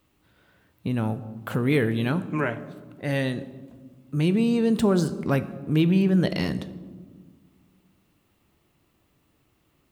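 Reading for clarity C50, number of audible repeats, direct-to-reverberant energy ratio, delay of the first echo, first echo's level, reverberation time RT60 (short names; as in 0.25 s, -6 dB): 14.5 dB, none, 11.5 dB, none, none, 1.5 s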